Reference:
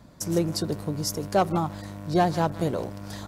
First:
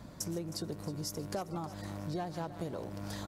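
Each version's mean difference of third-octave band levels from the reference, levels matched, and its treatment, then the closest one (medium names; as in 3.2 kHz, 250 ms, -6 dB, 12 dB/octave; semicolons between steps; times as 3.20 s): 5.5 dB: compression 6:1, threshold -38 dBFS, peak gain reduction 19.5 dB; on a send: feedback delay 315 ms, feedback 55%, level -15 dB; on the sum: trim +1.5 dB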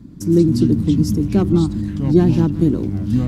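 10.0 dB: resonant low shelf 430 Hz +12.5 dB, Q 3; ever faster or slower copies 94 ms, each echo -6 st, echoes 3, each echo -6 dB; trim -3.5 dB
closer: first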